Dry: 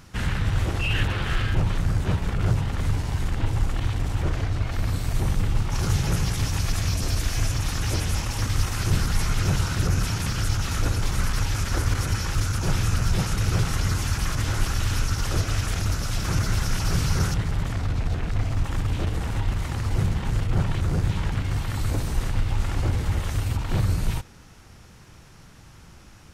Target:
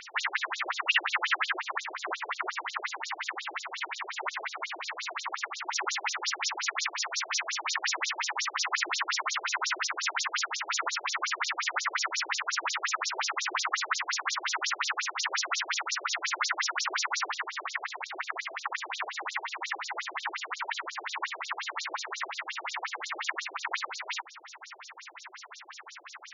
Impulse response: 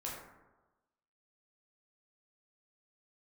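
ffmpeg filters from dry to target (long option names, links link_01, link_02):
-filter_complex "[0:a]equalizer=frequency=125:width_type=o:width=1:gain=7,equalizer=frequency=250:width_type=o:width=1:gain=4,equalizer=frequency=500:width_type=o:width=1:gain=-12,equalizer=frequency=1000:width_type=o:width=1:gain=10,equalizer=frequency=2000:width_type=o:width=1:gain=11,equalizer=frequency=8000:width_type=o:width=1:gain=10,asplit=2[link_01][link_02];[link_02]acompressor=threshold=-32dB:ratio=8,volume=2dB[link_03];[link_01][link_03]amix=inputs=2:normalize=0,afftfilt=real='re*between(b*sr/1024,470*pow(5200/470,0.5+0.5*sin(2*PI*5.6*pts/sr))/1.41,470*pow(5200/470,0.5+0.5*sin(2*PI*5.6*pts/sr))*1.41)':imag='im*between(b*sr/1024,470*pow(5200/470,0.5+0.5*sin(2*PI*5.6*pts/sr))/1.41,470*pow(5200/470,0.5+0.5*sin(2*PI*5.6*pts/sr))*1.41)':win_size=1024:overlap=0.75"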